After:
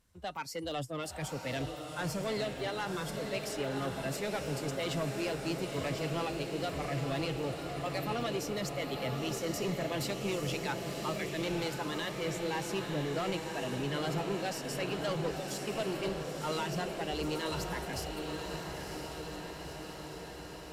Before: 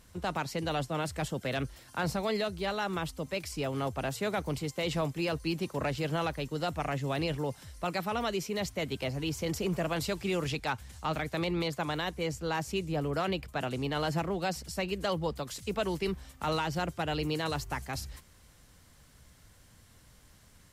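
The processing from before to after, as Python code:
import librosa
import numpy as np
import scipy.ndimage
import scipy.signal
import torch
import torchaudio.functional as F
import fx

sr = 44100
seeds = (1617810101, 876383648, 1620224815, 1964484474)

y = fx.noise_reduce_blind(x, sr, reduce_db=14)
y = 10.0 ** (-30.0 / 20.0) * np.tanh(y / 10.0 ** (-30.0 / 20.0))
y = fx.echo_diffused(y, sr, ms=991, feedback_pct=70, wet_db=-4.5)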